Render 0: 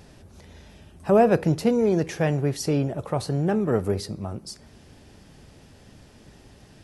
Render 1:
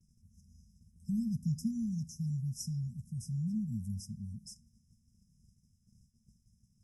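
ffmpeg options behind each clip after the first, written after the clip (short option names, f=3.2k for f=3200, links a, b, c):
-af "afftfilt=real='re*(1-between(b*sr/4096,240,5000))':imag='im*(1-between(b*sr/4096,240,5000))':win_size=4096:overlap=0.75,agate=range=-33dB:threshold=-44dB:ratio=3:detection=peak,volume=-9dB"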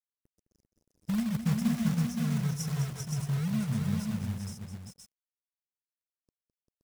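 -filter_complex "[0:a]aeval=exprs='sgn(val(0))*max(abs(val(0))-0.002,0)':c=same,acrusher=bits=3:mode=log:mix=0:aa=0.000001,asplit=2[a][b];[b]aecho=0:1:210|395|522:0.335|0.596|0.596[c];[a][c]amix=inputs=2:normalize=0,volume=4dB"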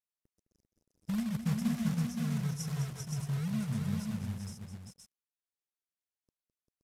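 -af "aresample=32000,aresample=44100,volume=-3.5dB"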